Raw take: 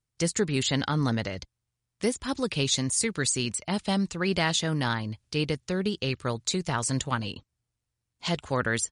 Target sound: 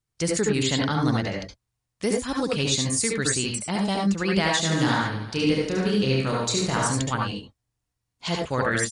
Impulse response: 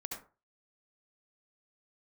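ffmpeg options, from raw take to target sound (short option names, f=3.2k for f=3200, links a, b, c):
-filter_complex "[0:a]asplit=3[a][b][c];[a]afade=t=out:st=4.63:d=0.02[d];[b]aecho=1:1:30|75|142.5|243.8|395.6:0.631|0.398|0.251|0.158|0.1,afade=t=in:st=4.63:d=0.02,afade=t=out:st=6.87:d=0.02[e];[c]afade=t=in:st=6.87:d=0.02[f];[d][e][f]amix=inputs=3:normalize=0[g];[1:a]atrim=start_sample=2205,afade=t=out:st=0.16:d=0.01,atrim=end_sample=7497[h];[g][h]afir=irnorm=-1:irlink=0,volume=4.5dB"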